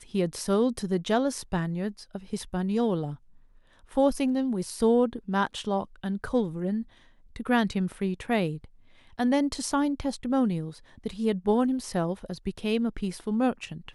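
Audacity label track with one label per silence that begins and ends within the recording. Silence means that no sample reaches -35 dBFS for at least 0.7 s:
3.140000	3.960000	silence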